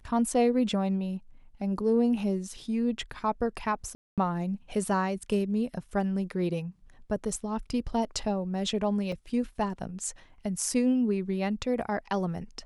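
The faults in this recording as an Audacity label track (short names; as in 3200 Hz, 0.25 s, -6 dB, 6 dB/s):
3.950000	4.180000	gap 0.227 s
9.120000	9.120000	gap 3.6 ms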